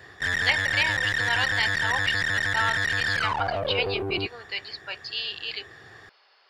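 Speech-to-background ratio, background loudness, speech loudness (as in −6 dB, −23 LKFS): −4.5 dB, −25.0 LKFS, −29.5 LKFS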